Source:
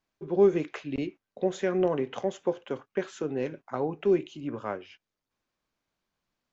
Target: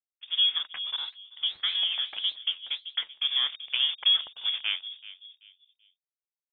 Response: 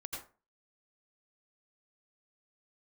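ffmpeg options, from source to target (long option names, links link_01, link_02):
-filter_complex "[0:a]aeval=exprs='sgn(val(0))*max(abs(val(0))-0.01,0)':channel_layout=same,dynaudnorm=framelen=300:gausssize=7:maxgain=7dB,asplit=2[link_01][link_02];[link_02]adelay=383,lowpass=frequency=1100:poles=1,volume=-15.5dB,asplit=2[link_03][link_04];[link_04]adelay=383,lowpass=frequency=1100:poles=1,volume=0.37,asplit=2[link_05][link_06];[link_06]adelay=383,lowpass=frequency=1100:poles=1,volume=0.37[link_07];[link_01][link_03][link_05][link_07]amix=inputs=4:normalize=0,acrossover=split=130|390[link_08][link_09][link_10];[link_08]acompressor=threshold=-53dB:ratio=4[link_11];[link_09]acompressor=threshold=-28dB:ratio=4[link_12];[link_10]acompressor=threshold=-24dB:ratio=4[link_13];[link_11][link_12][link_13]amix=inputs=3:normalize=0,lowpass=frequency=3100:width_type=q:width=0.5098,lowpass=frequency=3100:width_type=q:width=0.6013,lowpass=frequency=3100:width_type=q:width=0.9,lowpass=frequency=3100:width_type=q:width=2.563,afreqshift=-3700,asplit=3[link_14][link_15][link_16];[link_14]afade=type=out:start_time=0.96:duration=0.02[link_17];[link_15]flanger=delay=5.8:depth=8.5:regen=54:speed=1.7:shape=triangular,afade=type=in:start_time=0.96:duration=0.02,afade=type=out:start_time=3.22:duration=0.02[link_18];[link_16]afade=type=in:start_time=3.22:duration=0.02[link_19];[link_17][link_18][link_19]amix=inputs=3:normalize=0"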